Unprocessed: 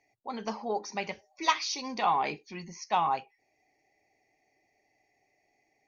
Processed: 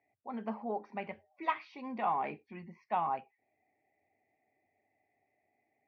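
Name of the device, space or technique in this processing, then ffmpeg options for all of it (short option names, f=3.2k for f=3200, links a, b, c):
bass cabinet: -af "highpass=79,equalizer=f=92:t=q:w=4:g=9,equalizer=f=230:t=q:w=4:g=7,equalizer=f=660:t=q:w=4:g=4,lowpass=f=2.4k:w=0.5412,lowpass=f=2.4k:w=1.3066,volume=-6.5dB"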